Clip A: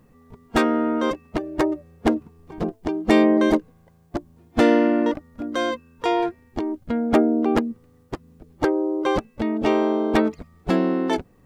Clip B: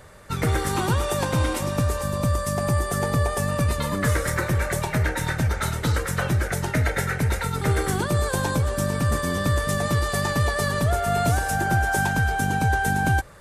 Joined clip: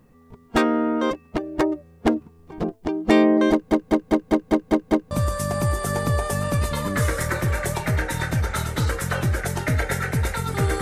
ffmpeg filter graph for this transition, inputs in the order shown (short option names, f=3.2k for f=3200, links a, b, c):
-filter_complex "[0:a]apad=whole_dur=10.81,atrim=end=10.81,asplit=8[a][b][c][d][e][f][g][h];[a]atrim=end=3.712[i];[b]atrim=start=3.508:end=3.712[j];[c]atrim=start=3.508:end=3.712[k];[d]atrim=start=3.508:end=3.712[l];[e]atrim=start=3.508:end=3.712[m];[f]atrim=start=3.508:end=3.712[n];[g]atrim=start=3.508:end=3.712[o];[h]atrim=start=3.508:end=3.712[p];[1:a]atrim=start=2.178:end=7.88[q];[i][j]acrossfade=d=0.004:c1=hsin:c2=hsin[r];[r][k]acrossfade=d=0.004:c1=hsin:c2=hsin[s];[s][l]acrossfade=d=0.004:c1=hsin:c2=hsin[t];[t][m]acrossfade=d=0.004:c1=hsin:c2=hsin[u];[u][n]acrossfade=d=0.004:c1=hsin:c2=hsin[v];[v][o]acrossfade=d=0.004:c1=hsin:c2=hsin[w];[w][p]acrossfade=d=0.004:c1=hsin:c2=hsin[x];[x][q]acrossfade=d=0.004:c1=hsin:c2=hsin"